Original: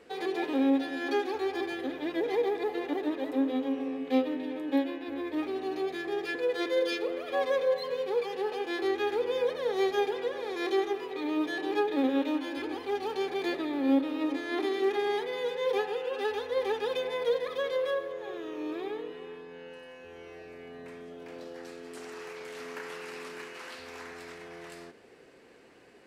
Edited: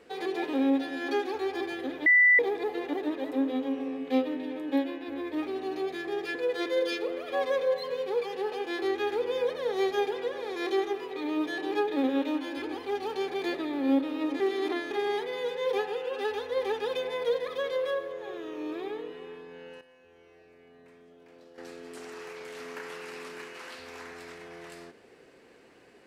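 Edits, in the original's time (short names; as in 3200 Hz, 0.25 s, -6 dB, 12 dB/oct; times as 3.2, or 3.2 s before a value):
2.06–2.39 bleep 1980 Hz -16 dBFS
14.4–14.91 reverse
19.81–21.58 gain -10.5 dB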